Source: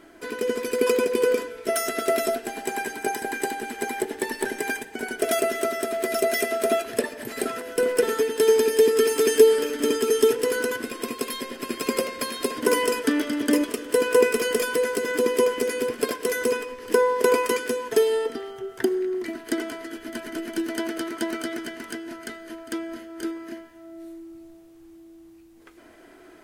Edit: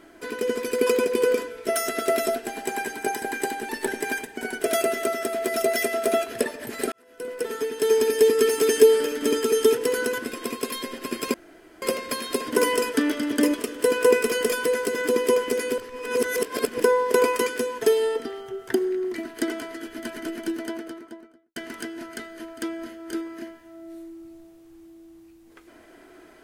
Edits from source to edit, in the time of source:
3.69–4.27 cut
7.5–8.76 fade in
11.92 insert room tone 0.48 s
15.88–16.9 reverse
20.29–21.66 studio fade out

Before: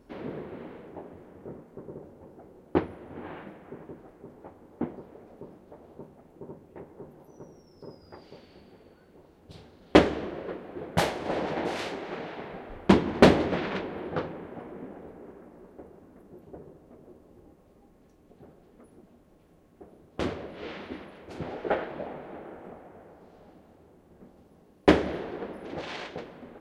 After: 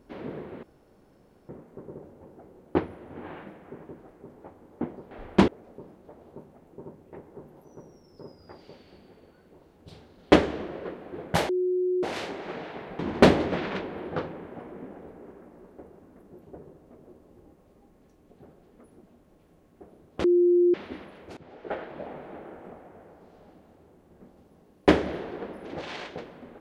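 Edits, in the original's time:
0.63–1.49 room tone
11.12–11.66 bleep 364 Hz -22.5 dBFS
12.62–12.99 move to 5.11
20.24–20.74 bleep 352 Hz -16.5 dBFS
21.37–22.19 fade in, from -18.5 dB

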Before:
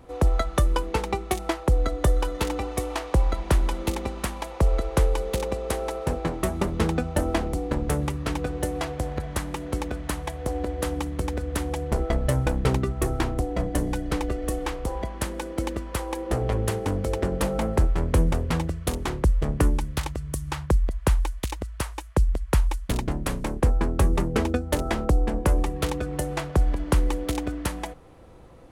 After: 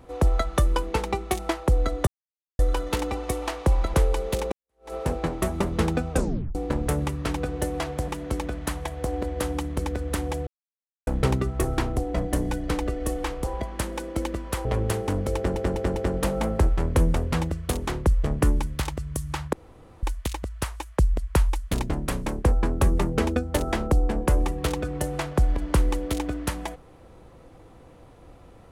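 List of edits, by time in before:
2.07 insert silence 0.52 s
3.42–4.95 cut
5.53–5.94 fade in exponential
7.12 tape stop 0.44 s
9.09–9.5 cut
11.89–12.49 mute
16.07–16.43 cut
17.14 stutter 0.20 s, 4 plays
20.71–21.21 room tone

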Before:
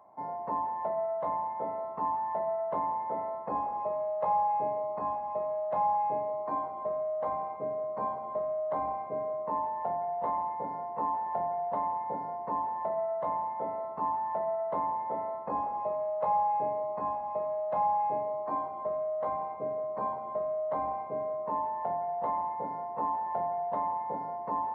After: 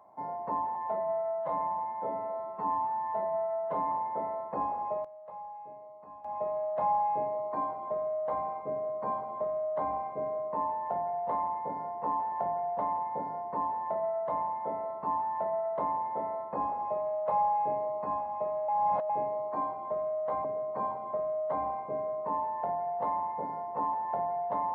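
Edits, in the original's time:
0.75–2.86 stretch 1.5×
3.68–5.5 dip -16 dB, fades 0.31 s logarithmic
17.63–18.04 reverse
19.39–19.66 cut

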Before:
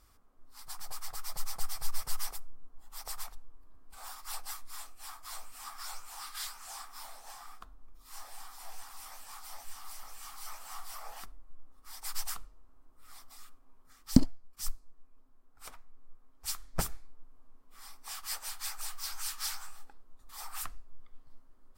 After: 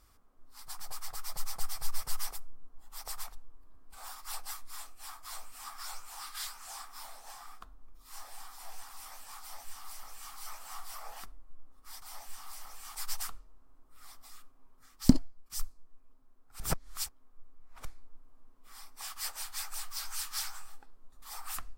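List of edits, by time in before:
9.4–10.33 copy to 12.02
15.67–16.92 reverse

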